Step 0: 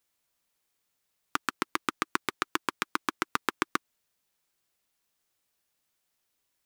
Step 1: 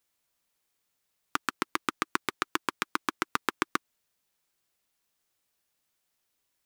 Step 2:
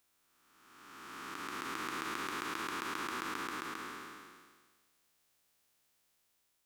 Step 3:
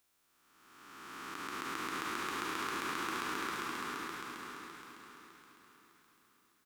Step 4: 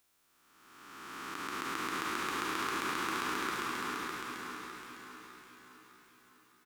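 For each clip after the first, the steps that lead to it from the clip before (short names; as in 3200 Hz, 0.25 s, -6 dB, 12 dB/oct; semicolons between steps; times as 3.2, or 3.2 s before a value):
nothing audible
time blur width 0.93 s; gain +5 dB
feedback echo 0.606 s, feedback 39%, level -4 dB; on a send at -21.5 dB: reverb RT60 3.6 s, pre-delay 3 ms
feedback echo 0.622 s, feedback 47%, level -14 dB; gain +2.5 dB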